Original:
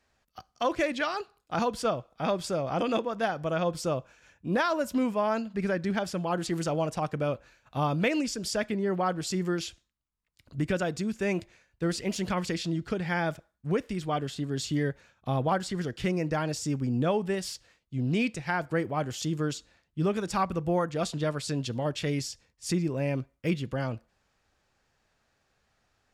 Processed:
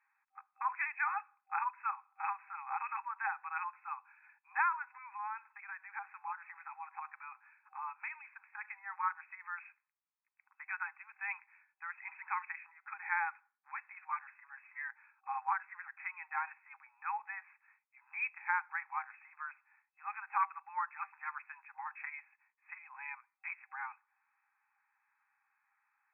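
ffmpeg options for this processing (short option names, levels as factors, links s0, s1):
-filter_complex "[0:a]asettb=1/sr,asplit=3[s0][s1][s2];[s0]atrim=end=4.974[s3];[s1]atrim=start=4.97:end=8.65,asetpts=PTS-STARTPTS,afade=t=in:d=0.004:c=qsin,afade=t=out:st=3.676:d=0.004:c=qsin,acompressor=threshold=0.0355:ratio=6:attack=3.2:release=140:knee=1:detection=peak[s4];[s2]atrim=start=8.646[s5];[s3][s4]acrossfade=d=0.004:c1=hsin:c2=qsin[s6];[s6][s5]acrossfade=d=0.004:c1=qsin:c2=hsin,afftfilt=real='re*between(b*sr/4096,780,2600)':imag='im*between(b*sr/4096,780,2600)':win_size=4096:overlap=0.75,volume=0.794"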